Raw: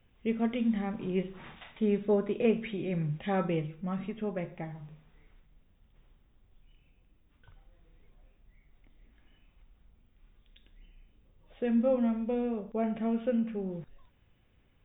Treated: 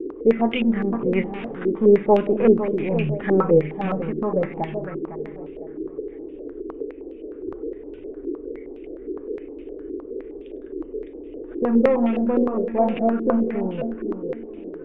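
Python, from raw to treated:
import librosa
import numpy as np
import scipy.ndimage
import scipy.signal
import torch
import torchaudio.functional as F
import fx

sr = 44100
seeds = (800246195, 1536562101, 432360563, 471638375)

p1 = np.where(x < 0.0, 10.0 ** (-3.0 / 20.0) * x, x)
p2 = fx.dmg_noise_band(p1, sr, seeds[0], low_hz=270.0, high_hz=460.0, level_db=-47.0)
p3 = p2 + fx.echo_feedback(p2, sr, ms=506, feedback_pct=31, wet_db=-9, dry=0)
p4 = fx.filter_held_lowpass(p3, sr, hz=9.7, low_hz=360.0, high_hz=2700.0)
y = p4 * 10.0 ** (8.5 / 20.0)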